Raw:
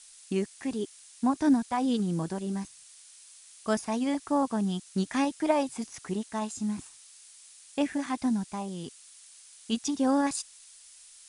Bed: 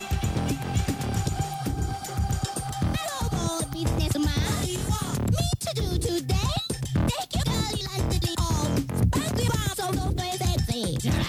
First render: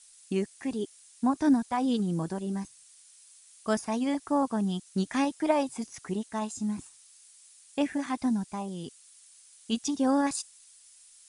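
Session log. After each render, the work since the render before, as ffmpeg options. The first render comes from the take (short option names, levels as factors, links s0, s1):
-af "afftdn=nr=6:nf=-53"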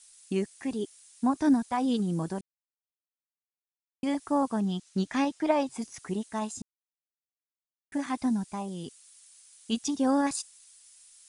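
-filter_complex "[0:a]asettb=1/sr,asplit=3[s0][s1][s2];[s0]atrim=end=4.604[s3];[s1]atrim=start=4.6:end=5.74,asetpts=PTS-STARTPTS,afade=t=in:d=0.004:c=qsin,afade=t=out:st=1.136:d=0.004:c=qsin,lowpass=6700[s4];[s2]atrim=start=5.736[s5];[s3][s4]acrossfade=d=0.004:c1=hsin:c2=qsin[s6];[s6][s5]acrossfade=d=0.004:c1=qsin:c2=hsin,asplit=5[s7][s8][s9][s10][s11];[s7]atrim=end=2.41,asetpts=PTS-STARTPTS,afade=t=out:st=2.406:d=0.004:c=hsin[s12];[s8]atrim=start=2.41:end=4.03,asetpts=PTS-STARTPTS,volume=0[s13];[s9]atrim=start=4.03:end=6.62,asetpts=PTS-STARTPTS,afade=t=in:d=0.004:c=hsin,afade=t=out:st=2.586:d=0.004:c=hsin[s14];[s10]atrim=start=6.62:end=7.92,asetpts=PTS-STARTPTS,volume=0[s15];[s11]atrim=start=7.92,asetpts=PTS-STARTPTS,afade=t=in:d=0.004:c=hsin[s16];[s12][s13][s14][s15][s16]concat=n=5:v=0:a=1"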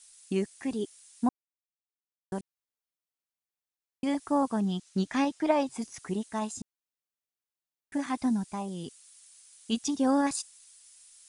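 -filter_complex "[0:a]asplit=3[s0][s1][s2];[s0]atrim=end=1.29,asetpts=PTS-STARTPTS,afade=t=out:st=1.286:d=0.004:c=hsin[s3];[s1]atrim=start=1.29:end=2.32,asetpts=PTS-STARTPTS,volume=0[s4];[s2]atrim=start=2.32,asetpts=PTS-STARTPTS,afade=t=in:d=0.004:c=hsin[s5];[s3][s4][s5]concat=n=3:v=0:a=1"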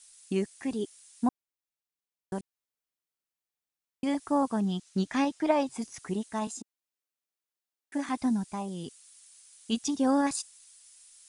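-filter_complex "[0:a]asettb=1/sr,asplit=3[s0][s1][s2];[s0]atrim=end=6.474[s3];[s1]atrim=start=6.47:end=8.09,asetpts=PTS-STARTPTS,afade=t=in:d=0.004:c=qsin,afade=t=out:st=1.616:d=0.004:c=qsin,highpass=f=230:w=0.5412,highpass=f=230:w=1.3066[s4];[s2]atrim=start=8.086[s5];[s3][s4]acrossfade=d=0.004:c1=hsin:c2=qsin[s6];[s6][s5]acrossfade=d=0.004:c1=qsin:c2=hsin"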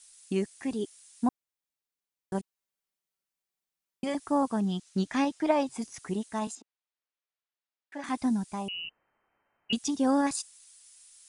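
-filter_complex "[0:a]asettb=1/sr,asplit=3[s0][s1][s2];[s0]atrim=end=2.344[s3];[s1]atrim=start=2.34:end=4.15,asetpts=PTS-STARTPTS,afade=t=in:d=0.004:c=qsin,afade=t=out:st=1.806:d=0.004:c=qsin,aecho=1:1:5.2:0.6,atrim=end_sample=79821[s4];[s2]atrim=start=4.146[s5];[s3][s4]acrossfade=d=0.004:c1=hsin:c2=qsin[s6];[s6][s5]acrossfade=d=0.004:c1=qsin:c2=hsin,asettb=1/sr,asplit=3[s7][s8][s9];[s7]atrim=end=6.554[s10];[s8]atrim=start=6.55:end=8.04,asetpts=PTS-STARTPTS,afade=t=in:d=0.004:c=qsin,afade=t=out:st=1.486:d=0.004:c=qsin,highpass=500,lowpass=4000[s11];[s9]atrim=start=8.036[s12];[s10][s11]acrossfade=d=0.004:c1=hsin:c2=qsin[s13];[s13][s12]acrossfade=d=0.004:c1=qsin:c2=hsin,asettb=1/sr,asplit=3[s14][s15][s16];[s14]atrim=end=8.684[s17];[s15]atrim=start=8.68:end=9.73,asetpts=PTS-STARTPTS,afade=t=in:d=0.004:c=qsin,afade=t=out:st=1.046:d=0.004:c=qsin,lowpass=f=2600:t=q:w=0.5098,lowpass=f=2600:t=q:w=0.6013,lowpass=f=2600:t=q:w=0.9,lowpass=f=2600:t=q:w=2.563,afreqshift=-3100[s18];[s16]atrim=start=9.726[s19];[s17][s18]acrossfade=d=0.004:c1=hsin:c2=qsin[s20];[s20][s19]acrossfade=d=0.004:c1=qsin:c2=hsin"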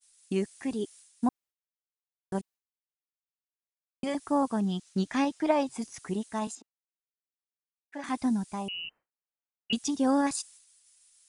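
-af "agate=range=0.0224:threshold=0.00355:ratio=3:detection=peak"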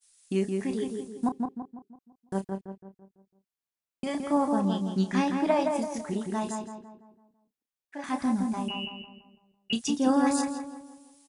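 -filter_complex "[0:a]asplit=2[s0][s1];[s1]adelay=31,volume=0.355[s2];[s0][s2]amix=inputs=2:normalize=0,asplit=2[s3][s4];[s4]adelay=167,lowpass=f=1900:p=1,volume=0.668,asplit=2[s5][s6];[s6]adelay=167,lowpass=f=1900:p=1,volume=0.46,asplit=2[s7][s8];[s8]adelay=167,lowpass=f=1900:p=1,volume=0.46,asplit=2[s9][s10];[s10]adelay=167,lowpass=f=1900:p=1,volume=0.46,asplit=2[s11][s12];[s12]adelay=167,lowpass=f=1900:p=1,volume=0.46,asplit=2[s13][s14];[s14]adelay=167,lowpass=f=1900:p=1,volume=0.46[s15];[s3][s5][s7][s9][s11][s13][s15]amix=inputs=7:normalize=0"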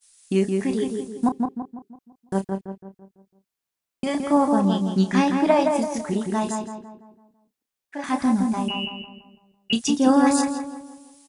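-af "volume=2.11"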